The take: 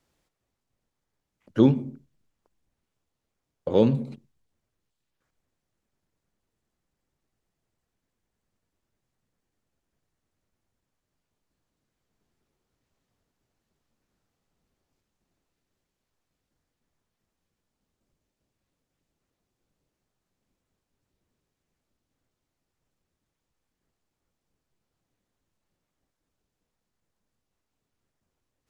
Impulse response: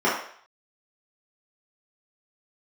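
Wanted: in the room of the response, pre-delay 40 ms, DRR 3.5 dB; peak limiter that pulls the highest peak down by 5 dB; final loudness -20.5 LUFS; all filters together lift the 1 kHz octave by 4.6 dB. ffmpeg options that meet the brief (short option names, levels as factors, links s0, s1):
-filter_complex "[0:a]equalizer=f=1000:t=o:g=5.5,alimiter=limit=0.282:level=0:latency=1,asplit=2[s0][s1];[1:a]atrim=start_sample=2205,adelay=40[s2];[s1][s2]afir=irnorm=-1:irlink=0,volume=0.0794[s3];[s0][s3]amix=inputs=2:normalize=0,volume=1.58"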